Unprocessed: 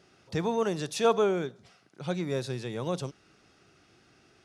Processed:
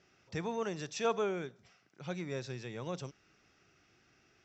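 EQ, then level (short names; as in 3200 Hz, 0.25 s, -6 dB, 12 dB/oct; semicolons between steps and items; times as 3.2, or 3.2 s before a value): rippled Chebyshev low-pass 7700 Hz, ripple 6 dB; low shelf 79 Hz +5.5 dB; -3.0 dB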